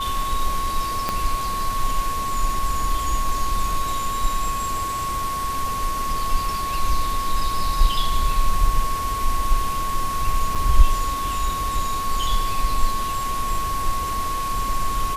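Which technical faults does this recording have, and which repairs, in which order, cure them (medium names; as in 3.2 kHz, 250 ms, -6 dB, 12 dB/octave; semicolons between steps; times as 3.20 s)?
whine 1.1 kHz -24 dBFS
1.09 s: pop -8 dBFS
10.55–10.56 s: dropout 5.7 ms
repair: de-click; band-stop 1.1 kHz, Q 30; interpolate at 10.55 s, 5.7 ms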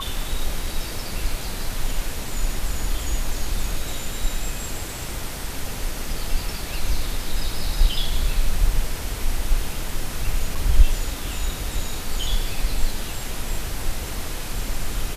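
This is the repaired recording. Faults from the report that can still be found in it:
1.09 s: pop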